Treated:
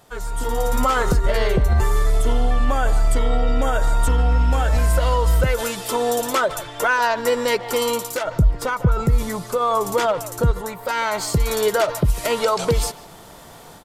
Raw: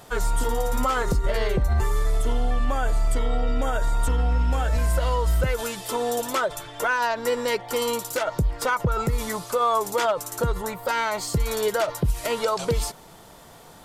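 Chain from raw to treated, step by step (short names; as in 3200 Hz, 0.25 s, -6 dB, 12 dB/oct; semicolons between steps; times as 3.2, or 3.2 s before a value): 8.24–10.51 low shelf 310 Hz +9.5 dB; AGC gain up to 11.5 dB; speakerphone echo 0.15 s, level -14 dB; gain -6 dB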